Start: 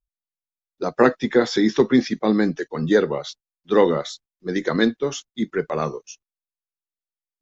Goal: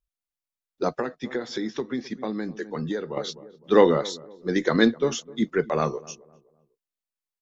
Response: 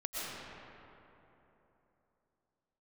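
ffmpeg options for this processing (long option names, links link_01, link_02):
-filter_complex "[0:a]asplit=2[link_01][link_02];[link_02]adelay=255,lowpass=frequency=970:poles=1,volume=-20.5dB,asplit=2[link_03][link_04];[link_04]adelay=255,lowpass=frequency=970:poles=1,volume=0.37,asplit=2[link_05][link_06];[link_06]adelay=255,lowpass=frequency=970:poles=1,volume=0.37[link_07];[link_01][link_03][link_05][link_07]amix=inputs=4:normalize=0,asettb=1/sr,asplit=3[link_08][link_09][link_10];[link_08]atrim=end=0.904[link_11];[link_09]atrim=start=0.9:end=3.17,asetpts=PTS-STARTPTS,afade=type=in:duration=0.004:curve=qsin,afade=type=out:start_time=2.266:duration=0.004:curve=qsin,acompressor=threshold=-27dB:ratio=6[link_12];[link_10]atrim=start=3.166[link_13];[link_11][link_12]acrossfade=duration=0.004:curve1=hsin:curve2=qsin[link_14];[link_14][link_13]acrossfade=duration=0.004:curve1=qsin:curve2=hsin"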